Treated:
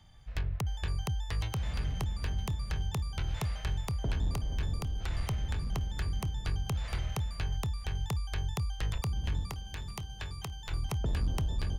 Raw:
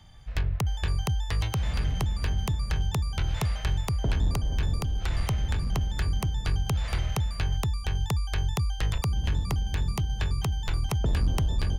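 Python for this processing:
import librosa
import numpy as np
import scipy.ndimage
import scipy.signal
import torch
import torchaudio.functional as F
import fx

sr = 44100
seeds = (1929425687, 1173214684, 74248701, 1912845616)

y = fx.low_shelf(x, sr, hz=490.0, db=-7.5, at=(9.47, 10.71))
y = fx.echo_feedback(y, sr, ms=964, feedback_pct=34, wet_db=-20.0)
y = F.gain(torch.from_numpy(y), -6.0).numpy()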